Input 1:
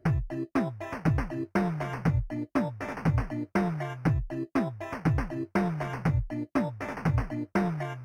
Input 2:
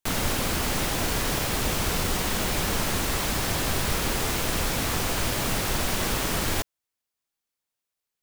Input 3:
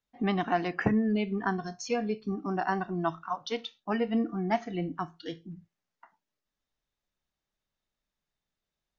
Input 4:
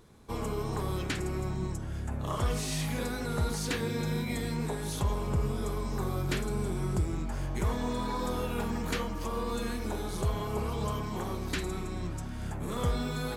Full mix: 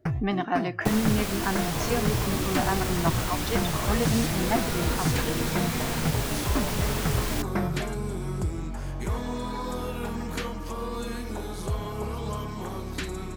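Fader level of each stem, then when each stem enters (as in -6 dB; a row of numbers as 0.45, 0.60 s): -2.0, -5.0, +1.0, +0.5 dB; 0.00, 0.80, 0.00, 1.45 s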